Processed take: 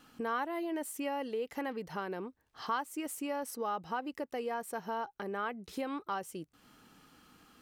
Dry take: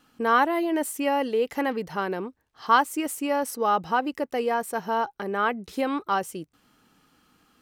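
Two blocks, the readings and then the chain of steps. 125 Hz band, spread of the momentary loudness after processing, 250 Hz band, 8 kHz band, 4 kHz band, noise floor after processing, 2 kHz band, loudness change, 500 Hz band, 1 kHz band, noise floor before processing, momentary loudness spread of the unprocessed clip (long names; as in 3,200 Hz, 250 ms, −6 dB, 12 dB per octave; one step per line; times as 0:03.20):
−9.0 dB, 5 LU, −10.5 dB, −9.0 dB, −11.5 dB, −75 dBFS, −12.5 dB, −12.0 dB, −11.0 dB, −13.0 dB, −70 dBFS, 8 LU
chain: downward compressor 2 to 1, threshold −46 dBFS, peak gain reduction 17.5 dB
level +1.5 dB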